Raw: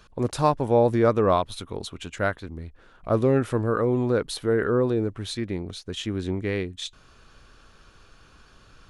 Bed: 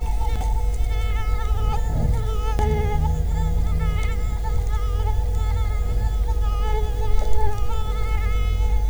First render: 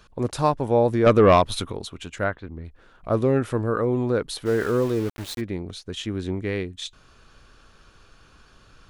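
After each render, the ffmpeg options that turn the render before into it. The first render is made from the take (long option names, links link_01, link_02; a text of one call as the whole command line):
ffmpeg -i in.wav -filter_complex "[0:a]asettb=1/sr,asplit=3[link_01][link_02][link_03];[link_01]atrim=end=1.064[link_04];[link_02]atrim=start=1.06:end=1.72,asetpts=PTS-STARTPTS,afade=type=in:duration=0.004:curve=qsin,afade=type=out:start_time=0.656:duration=0.004:curve=qsin,aeval=exprs='0.376*sin(PI/2*1.58*val(0)/0.376)':channel_layout=same[link_05];[link_03]atrim=start=1.716[link_06];[link_04][link_05]acrossfade=duration=0.004:curve1=hsin:curve2=qsin[link_07];[link_07][link_06]acrossfade=duration=0.004:curve1=qsin:curve2=hsin,asettb=1/sr,asplit=3[link_08][link_09][link_10];[link_08]atrim=end=2.244[link_11];[link_09]atrim=start=2.24:end=2.65,asetpts=PTS-STARTPTS,afade=type=in:duration=0.004:curve=qsin,afade=type=out:start_time=0.406:duration=0.004:curve=qsin,lowpass=2700[link_12];[link_10]atrim=start=2.646[link_13];[link_11][link_12]acrossfade=duration=0.004:curve1=hsin:curve2=qsin[link_14];[link_14][link_13]acrossfade=duration=0.004:curve1=qsin:curve2=hsin,asplit=3[link_15][link_16][link_17];[link_15]afade=type=out:start_time=4.45:duration=0.02[link_18];[link_16]aeval=exprs='val(0)*gte(abs(val(0)),0.0224)':channel_layout=same,afade=type=in:start_time=4.45:duration=0.02,afade=type=out:start_time=5.4:duration=0.02[link_19];[link_17]afade=type=in:start_time=5.4:duration=0.02[link_20];[link_18][link_19][link_20]amix=inputs=3:normalize=0" out.wav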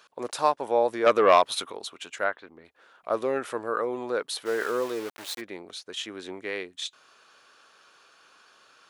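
ffmpeg -i in.wav -af "highpass=550" out.wav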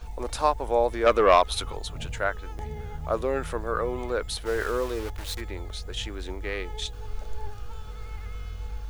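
ffmpeg -i in.wav -i bed.wav -filter_complex "[1:a]volume=-15dB[link_01];[0:a][link_01]amix=inputs=2:normalize=0" out.wav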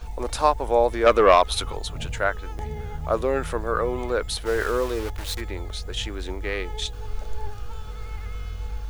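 ffmpeg -i in.wav -af "volume=3.5dB,alimiter=limit=-3dB:level=0:latency=1" out.wav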